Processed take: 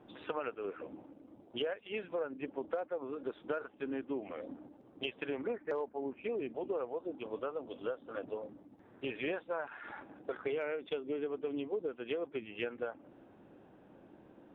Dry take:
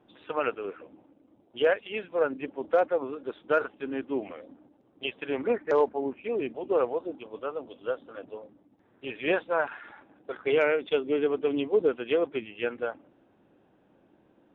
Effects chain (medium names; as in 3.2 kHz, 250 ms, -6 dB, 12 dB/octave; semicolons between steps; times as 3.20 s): treble shelf 3.3 kHz -7.5 dB; compression 6:1, threshold -40 dBFS, peak gain reduction 19.5 dB; trim +4.5 dB